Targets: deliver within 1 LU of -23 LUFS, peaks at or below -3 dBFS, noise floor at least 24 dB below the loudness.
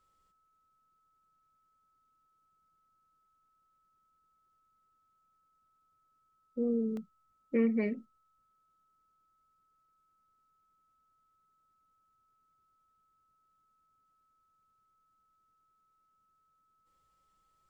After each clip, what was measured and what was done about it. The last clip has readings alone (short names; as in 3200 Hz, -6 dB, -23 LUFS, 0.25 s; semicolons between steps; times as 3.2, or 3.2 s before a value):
dropouts 1; longest dropout 1.5 ms; steady tone 1300 Hz; tone level -71 dBFS; loudness -32.5 LUFS; peak -18.5 dBFS; loudness target -23.0 LUFS
-> interpolate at 6.97, 1.5 ms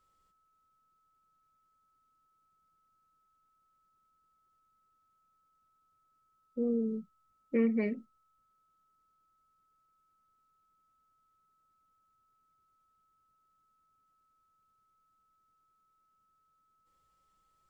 dropouts 0; steady tone 1300 Hz; tone level -71 dBFS
-> notch 1300 Hz, Q 30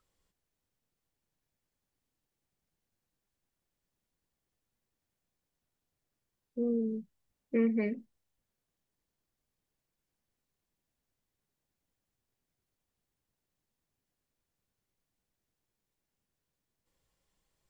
steady tone none; loudness -32.5 LUFS; peak -18.5 dBFS; loudness target -23.0 LUFS
-> gain +9.5 dB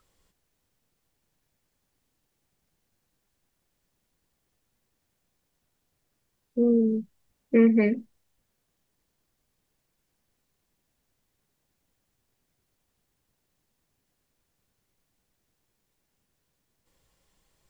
loudness -23.0 LUFS; peak -9.0 dBFS; noise floor -78 dBFS